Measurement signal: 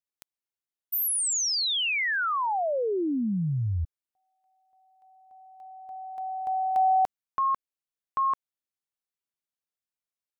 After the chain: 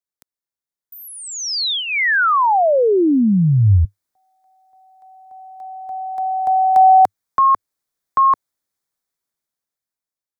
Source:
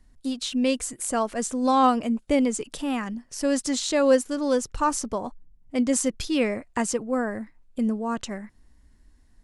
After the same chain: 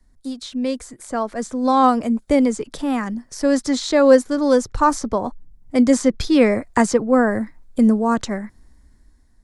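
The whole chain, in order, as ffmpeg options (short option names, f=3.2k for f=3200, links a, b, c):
-filter_complex "[0:a]adynamicequalizer=threshold=0.00224:dfrequency=100:dqfactor=4.1:tfrequency=100:tqfactor=4.1:attack=5:release=100:ratio=0.375:range=2:mode=boostabove:tftype=bell,acrossover=split=310|430|5100[a][b][c][d];[d]acompressor=threshold=-41dB:ratio=6:attack=7.2:release=455:detection=rms[e];[a][b][c][e]amix=inputs=4:normalize=0,equalizer=f=2.8k:w=3.7:g=-10.5,dynaudnorm=f=440:g=7:m=13dB"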